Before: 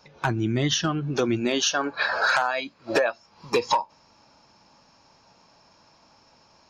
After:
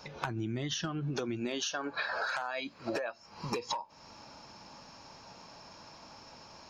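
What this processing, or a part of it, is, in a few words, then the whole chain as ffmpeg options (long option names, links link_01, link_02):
serial compression, peaks first: -filter_complex "[0:a]asettb=1/sr,asplit=3[link_01][link_02][link_03];[link_01]atrim=end=2.794[link_04];[link_02]atrim=start=2.79:end=3.6,asetpts=PTS-STARTPTS,afade=type=in:duration=0.004:curve=qsin,afade=type=out:start_time=0.806:duration=0.004:curve=qsin,bandreject=frequency=3500:width=8.5[link_05];[link_03]atrim=start=3.596[link_06];[link_04][link_05]acrossfade=duration=0.004:curve1=hsin:curve2=qsin[link_07];[link_07][link_06]acrossfade=duration=0.004:curve1=qsin:curve2=hsin,acompressor=threshold=-34dB:ratio=5,acompressor=threshold=-39dB:ratio=2.5,volume=5.5dB"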